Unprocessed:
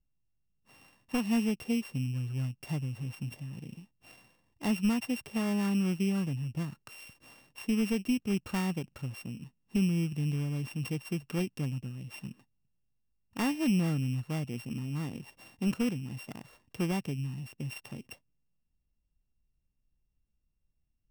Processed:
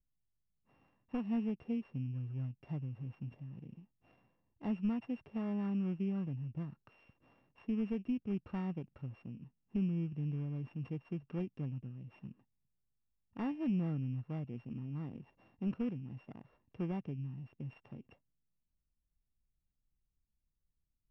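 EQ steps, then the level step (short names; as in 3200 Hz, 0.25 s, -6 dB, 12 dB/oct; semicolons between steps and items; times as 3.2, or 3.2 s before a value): LPF 1100 Hz 6 dB/oct; air absorption 190 m; -6.0 dB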